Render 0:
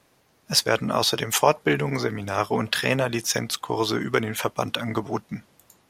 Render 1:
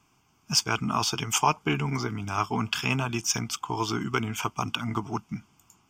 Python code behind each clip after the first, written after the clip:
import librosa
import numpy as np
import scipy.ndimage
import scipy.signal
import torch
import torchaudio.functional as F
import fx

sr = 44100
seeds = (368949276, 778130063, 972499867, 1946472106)

y = fx.fixed_phaser(x, sr, hz=2700.0, stages=8)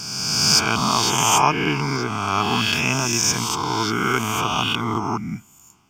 y = fx.spec_swells(x, sr, rise_s=1.75)
y = y * librosa.db_to_amplitude(2.5)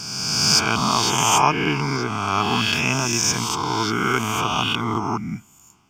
y = fx.high_shelf(x, sr, hz=11000.0, db=-5.0)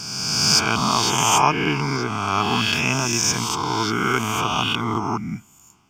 y = x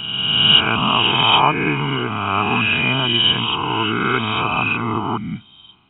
y = fx.freq_compress(x, sr, knee_hz=2400.0, ratio=4.0)
y = y * librosa.db_to_amplitude(2.0)